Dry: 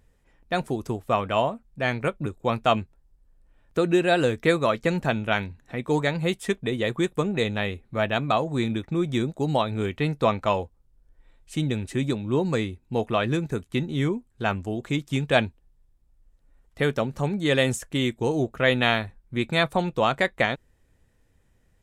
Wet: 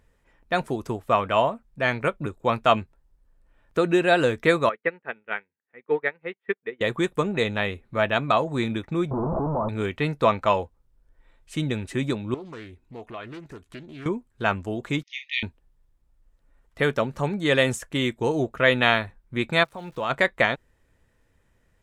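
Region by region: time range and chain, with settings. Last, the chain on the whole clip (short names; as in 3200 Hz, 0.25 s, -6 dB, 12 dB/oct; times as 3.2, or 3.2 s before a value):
4.69–6.81 speaker cabinet 280–2600 Hz, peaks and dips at 290 Hz -5 dB, 440 Hz +5 dB, 650 Hz -7 dB, 1000 Hz -5 dB, 1900 Hz +5 dB + upward expander 2.5:1, over -40 dBFS
9.11–9.69 infinite clipping + steep low-pass 1100 Hz 48 dB/oct
12.34–14.06 compressor 2.5:1, threshold -43 dBFS + comb 2.8 ms, depth 30% + Doppler distortion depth 0.32 ms
15.03–15.43 brick-wall FIR band-pass 1800–6700 Hz + air absorption 100 m + doubler 42 ms -8 dB
19.63–20.09 compressor 2.5:1, threshold -27 dBFS + auto swell 0.547 s + crackle 500/s -49 dBFS
whole clip: bell 1200 Hz +6 dB 2.8 oct; notch 770 Hz, Q 13; gain -2 dB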